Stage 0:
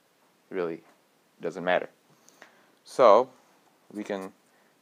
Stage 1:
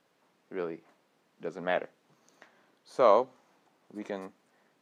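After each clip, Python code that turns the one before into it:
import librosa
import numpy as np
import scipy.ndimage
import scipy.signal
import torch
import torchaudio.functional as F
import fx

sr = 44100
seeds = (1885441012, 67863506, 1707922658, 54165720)

y = fx.high_shelf(x, sr, hz=7400.0, db=-10.0)
y = y * 10.0 ** (-4.5 / 20.0)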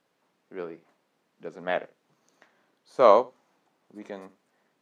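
y = x + 10.0 ** (-18.0 / 20.0) * np.pad(x, (int(75 * sr / 1000.0), 0))[:len(x)]
y = fx.upward_expand(y, sr, threshold_db=-35.0, expansion=1.5)
y = y * 10.0 ** (5.5 / 20.0)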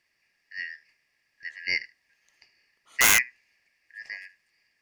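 y = fx.band_shuffle(x, sr, order='3142')
y = (np.mod(10.0 ** (11.5 / 20.0) * y + 1.0, 2.0) - 1.0) / 10.0 ** (11.5 / 20.0)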